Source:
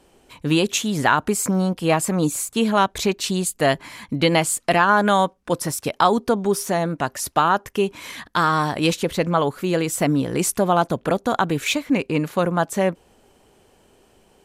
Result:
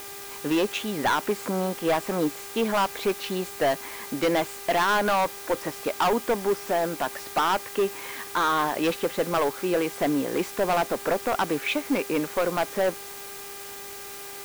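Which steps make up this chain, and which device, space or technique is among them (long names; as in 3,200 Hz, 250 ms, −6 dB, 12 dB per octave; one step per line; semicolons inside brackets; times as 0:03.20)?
aircraft radio (band-pass filter 330–2,400 Hz; hard clipping −18.5 dBFS, distortion −7 dB; hum with harmonics 400 Hz, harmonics 6, −45 dBFS −4 dB per octave; white noise bed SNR 14 dB)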